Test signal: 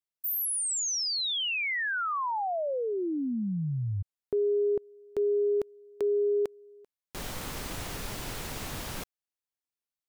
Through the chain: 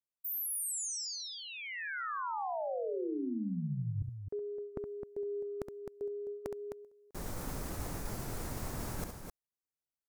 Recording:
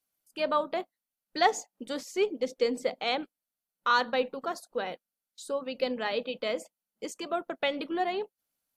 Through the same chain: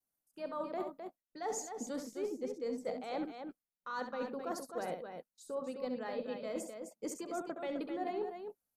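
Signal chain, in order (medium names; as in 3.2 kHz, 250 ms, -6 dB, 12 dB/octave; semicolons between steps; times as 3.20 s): bass shelf 410 Hz +4 dB; expander -41 dBFS, range -7 dB; reverse; compression 12:1, threshold -37 dBFS; reverse; vibrato 0.32 Hz 12 cents; peaking EQ 3.1 kHz -11 dB 1.2 oct; on a send: loudspeakers at several distances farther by 23 m -8 dB, 89 m -7 dB; on the sum: trim +1.5 dB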